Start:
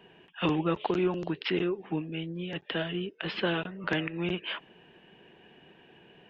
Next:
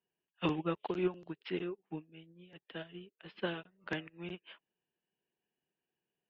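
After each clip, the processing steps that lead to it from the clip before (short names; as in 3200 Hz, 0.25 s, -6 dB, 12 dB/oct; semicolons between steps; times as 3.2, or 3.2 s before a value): upward expander 2.5:1, over -45 dBFS; gain -3 dB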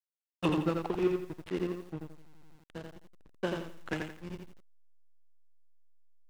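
backlash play -35 dBFS; lo-fi delay 85 ms, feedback 35%, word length 10-bit, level -4 dB; gain +3.5 dB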